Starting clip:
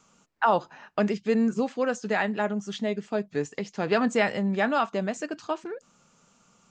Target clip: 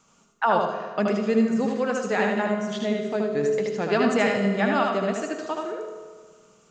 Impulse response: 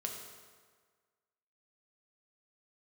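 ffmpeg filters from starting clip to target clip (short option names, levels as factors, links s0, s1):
-filter_complex "[0:a]asplit=2[s0][s1];[1:a]atrim=start_sample=2205,adelay=76[s2];[s1][s2]afir=irnorm=-1:irlink=0,volume=0.841[s3];[s0][s3]amix=inputs=2:normalize=0"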